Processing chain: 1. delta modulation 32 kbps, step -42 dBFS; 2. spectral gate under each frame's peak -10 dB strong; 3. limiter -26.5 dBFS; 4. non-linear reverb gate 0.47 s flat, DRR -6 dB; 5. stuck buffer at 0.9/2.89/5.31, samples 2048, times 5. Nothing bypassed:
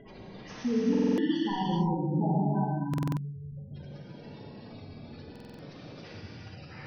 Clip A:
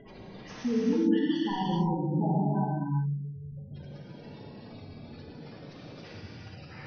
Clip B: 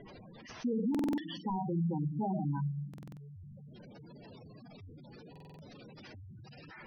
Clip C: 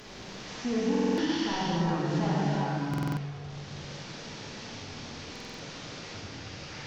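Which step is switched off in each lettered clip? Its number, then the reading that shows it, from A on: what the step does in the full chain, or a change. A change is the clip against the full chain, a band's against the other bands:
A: 5, crest factor change +2.0 dB; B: 4, crest factor change -3.5 dB; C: 2, 2 kHz band +6.5 dB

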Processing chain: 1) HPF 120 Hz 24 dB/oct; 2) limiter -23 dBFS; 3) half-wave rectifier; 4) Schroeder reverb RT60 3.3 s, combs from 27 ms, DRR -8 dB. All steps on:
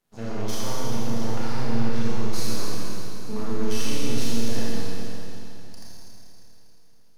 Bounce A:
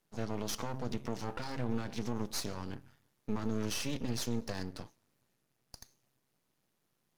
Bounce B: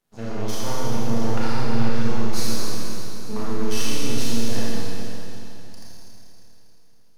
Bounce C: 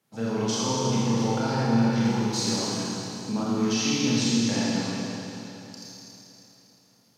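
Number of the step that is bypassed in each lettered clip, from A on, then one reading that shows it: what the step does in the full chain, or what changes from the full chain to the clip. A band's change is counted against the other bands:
4, momentary loudness spread change -2 LU; 2, loudness change +2.5 LU; 3, distortion 0 dB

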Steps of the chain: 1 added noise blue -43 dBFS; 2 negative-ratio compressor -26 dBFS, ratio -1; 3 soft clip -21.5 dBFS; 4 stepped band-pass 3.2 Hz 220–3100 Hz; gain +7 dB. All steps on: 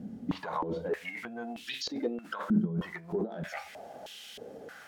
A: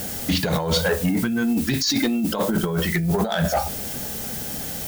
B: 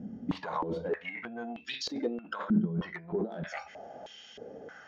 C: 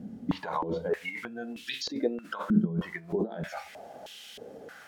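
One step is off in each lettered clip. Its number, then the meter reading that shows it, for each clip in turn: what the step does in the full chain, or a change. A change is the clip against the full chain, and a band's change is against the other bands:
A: 4, 8 kHz band +10.5 dB; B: 1, 8 kHz band -1.5 dB; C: 3, distortion -14 dB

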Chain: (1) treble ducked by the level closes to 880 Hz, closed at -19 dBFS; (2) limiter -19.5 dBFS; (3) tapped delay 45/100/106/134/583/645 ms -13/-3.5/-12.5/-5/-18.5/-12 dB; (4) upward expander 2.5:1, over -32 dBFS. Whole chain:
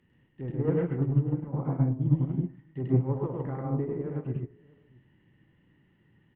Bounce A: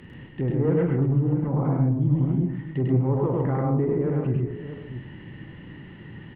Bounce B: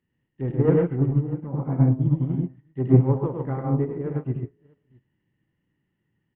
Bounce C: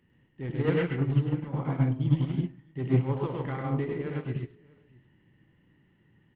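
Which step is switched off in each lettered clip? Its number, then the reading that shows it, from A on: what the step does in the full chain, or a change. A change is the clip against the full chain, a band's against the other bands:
4, crest factor change -5.5 dB; 2, mean gain reduction 3.0 dB; 1, 1 kHz band +3.0 dB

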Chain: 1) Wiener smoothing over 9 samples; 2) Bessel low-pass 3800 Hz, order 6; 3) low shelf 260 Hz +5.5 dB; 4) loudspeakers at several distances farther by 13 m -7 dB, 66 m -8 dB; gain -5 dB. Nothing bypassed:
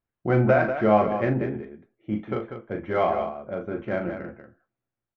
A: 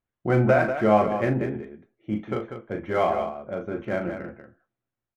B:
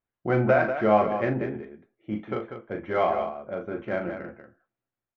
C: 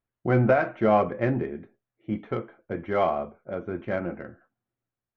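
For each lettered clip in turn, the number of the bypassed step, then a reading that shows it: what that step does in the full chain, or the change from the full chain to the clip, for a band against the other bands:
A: 2, 4 kHz band +2.0 dB; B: 3, 125 Hz band -4.0 dB; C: 4, echo-to-direct -4.5 dB to none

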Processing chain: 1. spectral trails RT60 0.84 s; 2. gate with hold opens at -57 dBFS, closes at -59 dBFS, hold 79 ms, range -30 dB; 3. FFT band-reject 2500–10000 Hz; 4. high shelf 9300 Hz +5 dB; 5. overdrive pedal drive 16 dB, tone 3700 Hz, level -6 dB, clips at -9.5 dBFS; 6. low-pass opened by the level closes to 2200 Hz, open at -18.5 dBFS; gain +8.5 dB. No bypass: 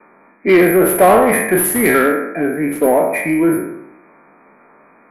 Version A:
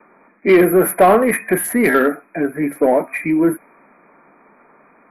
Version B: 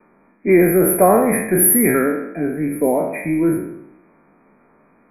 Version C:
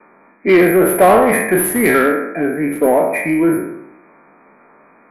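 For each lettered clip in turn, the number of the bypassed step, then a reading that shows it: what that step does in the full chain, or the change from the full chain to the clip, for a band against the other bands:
1, 8 kHz band -4.0 dB; 5, crest factor change +2.5 dB; 4, 8 kHz band -2.5 dB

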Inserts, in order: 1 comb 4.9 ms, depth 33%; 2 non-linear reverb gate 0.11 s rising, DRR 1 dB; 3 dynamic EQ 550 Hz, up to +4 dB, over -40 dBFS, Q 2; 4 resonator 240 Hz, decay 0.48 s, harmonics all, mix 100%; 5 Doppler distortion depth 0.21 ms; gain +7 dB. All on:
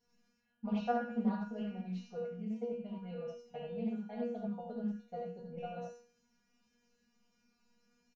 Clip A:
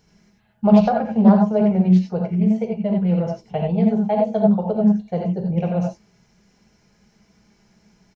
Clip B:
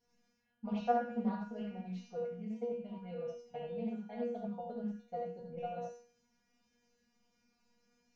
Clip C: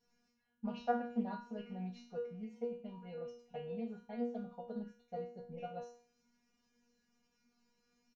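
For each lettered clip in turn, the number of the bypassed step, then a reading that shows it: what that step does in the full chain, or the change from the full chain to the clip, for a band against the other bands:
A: 4, 125 Hz band +6.0 dB; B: 1, crest factor change +2.5 dB; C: 2, crest factor change +3.5 dB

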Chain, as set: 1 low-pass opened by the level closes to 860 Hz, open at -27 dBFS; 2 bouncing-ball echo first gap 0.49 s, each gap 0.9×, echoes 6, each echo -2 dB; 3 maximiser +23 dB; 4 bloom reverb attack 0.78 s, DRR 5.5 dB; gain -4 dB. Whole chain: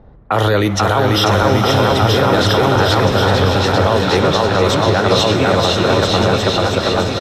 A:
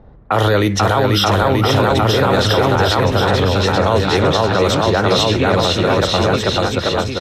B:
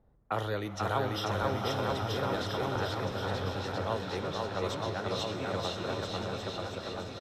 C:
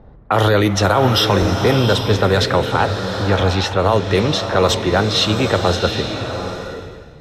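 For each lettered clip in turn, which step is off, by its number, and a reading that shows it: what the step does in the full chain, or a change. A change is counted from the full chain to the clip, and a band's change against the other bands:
4, crest factor change -2.5 dB; 3, crest factor change +5.0 dB; 2, momentary loudness spread change +7 LU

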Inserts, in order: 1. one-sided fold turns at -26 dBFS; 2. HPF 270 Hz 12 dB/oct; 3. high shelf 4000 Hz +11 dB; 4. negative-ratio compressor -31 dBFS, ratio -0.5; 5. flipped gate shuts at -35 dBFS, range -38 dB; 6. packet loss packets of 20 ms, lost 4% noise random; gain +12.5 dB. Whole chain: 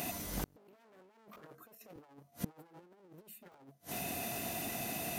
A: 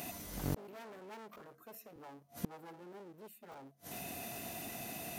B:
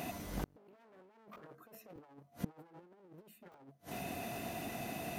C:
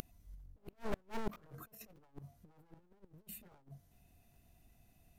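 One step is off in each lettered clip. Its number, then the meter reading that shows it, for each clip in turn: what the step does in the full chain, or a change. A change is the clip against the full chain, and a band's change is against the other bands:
4, crest factor change +1.5 dB; 3, 8 kHz band -8.5 dB; 2, 8 kHz band -11.0 dB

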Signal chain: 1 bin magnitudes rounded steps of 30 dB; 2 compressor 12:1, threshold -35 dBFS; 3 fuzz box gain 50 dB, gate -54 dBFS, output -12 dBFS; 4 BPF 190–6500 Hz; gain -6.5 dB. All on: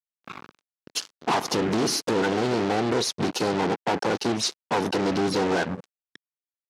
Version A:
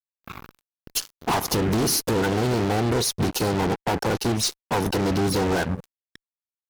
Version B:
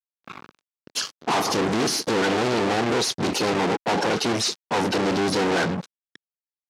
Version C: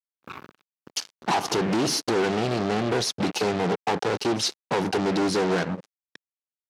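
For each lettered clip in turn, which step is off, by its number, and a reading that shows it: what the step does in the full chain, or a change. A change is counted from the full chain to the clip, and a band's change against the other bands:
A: 4, 125 Hz band +7.5 dB; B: 2, mean gain reduction 13.0 dB; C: 1, 125 Hz band +1.5 dB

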